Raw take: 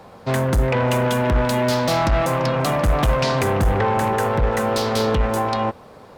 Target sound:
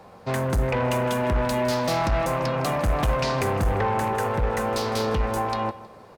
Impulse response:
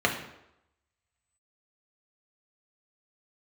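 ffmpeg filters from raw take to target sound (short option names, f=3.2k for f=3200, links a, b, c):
-filter_complex "[0:a]aecho=1:1:159|318|477:0.119|0.0416|0.0146,asplit=2[a][b];[1:a]atrim=start_sample=2205,asetrate=66150,aresample=44100[c];[b][c]afir=irnorm=-1:irlink=0,volume=-24.5dB[d];[a][d]amix=inputs=2:normalize=0,volume=-5dB"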